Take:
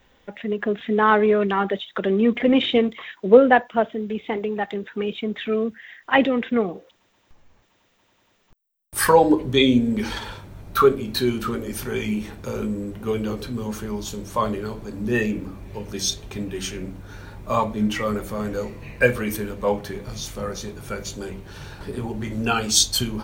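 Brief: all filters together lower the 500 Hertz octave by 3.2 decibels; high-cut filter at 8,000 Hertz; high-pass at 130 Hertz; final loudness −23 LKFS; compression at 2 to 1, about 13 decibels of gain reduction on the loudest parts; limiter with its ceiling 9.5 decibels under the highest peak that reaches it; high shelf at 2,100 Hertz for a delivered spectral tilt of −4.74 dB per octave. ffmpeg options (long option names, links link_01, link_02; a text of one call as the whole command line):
ffmpeg -i in.wav -af "highpass=130,lowpass=8000,equalizer=frequency=500:width_type=o:gain=-3.5,highshelf=frequency=2100:gain=-3.5,acompressor=threshold=-34dB:ratio=2,volume=12dB,alimiter=limit=-12dB:level=0:latency=1" out.wav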